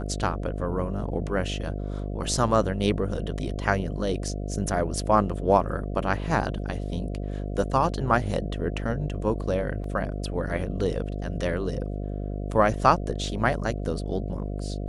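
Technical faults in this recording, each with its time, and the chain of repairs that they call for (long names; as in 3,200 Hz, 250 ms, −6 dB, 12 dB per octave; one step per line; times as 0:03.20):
mains buzz 50 Hz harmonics 14 −31 dBFS
0:09.84: drop-out 2.5 ms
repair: hum removal 50 Hz, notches 14
repair the gap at 0:09.84, 2.5 ms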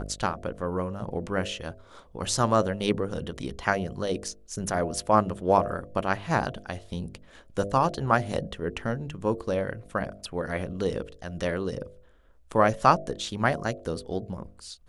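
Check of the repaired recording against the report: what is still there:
none of them is left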